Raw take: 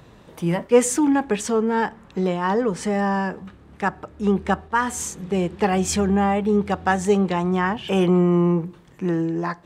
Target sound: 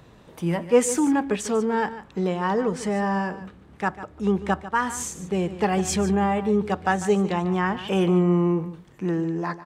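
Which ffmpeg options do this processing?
-af "aecho=1:1:147:0.2,volume=-2.5dB"

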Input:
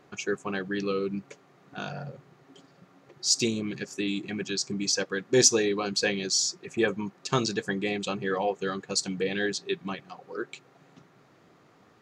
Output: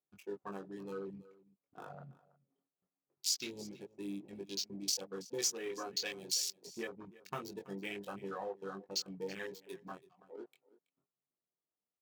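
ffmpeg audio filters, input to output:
-af "bandreject=f=1.6k:w=8.1,adynamicsmooth=sensitivity=6:basefreq=810,agate=range=-12dB:threshold=-54dB:ratio=16:detection=peak,flanger=delay=20:depth=2.4:speed=0.24,afwtdn=0.0126,lowshelf=f=370:g=-11,acompressor=threshold=-33dB:ratio=6,aemphasis=mode=production:type=50fm,aecho=1:1:328:0.1,aphaser=in_gain=1:out_gain=1:delay=4.7:decay=0.22:speed=0.97:type=triangular,volume=-4dB"

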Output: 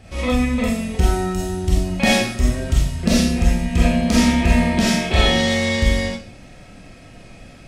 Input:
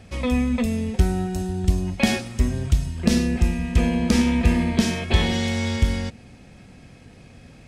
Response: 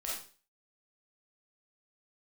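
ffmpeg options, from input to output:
-filter_complex "[1:a]atrim=start_sample=2205[a];[0:a][a]afir=irnorm=-1:irlink=0,volume=4.5dB"

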